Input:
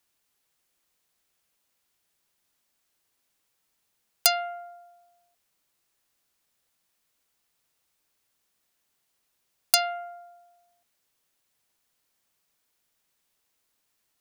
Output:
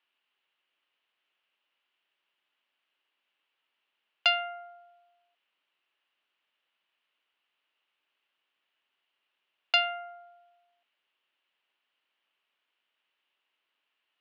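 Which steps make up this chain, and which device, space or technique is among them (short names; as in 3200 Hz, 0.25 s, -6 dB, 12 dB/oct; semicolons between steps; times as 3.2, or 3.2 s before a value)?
phone earpiece (speaker cabinet 430–3200 Hz, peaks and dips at 480 Hz -5 dB, 730 Hz -4 dB, 2900 Hz +9 dB)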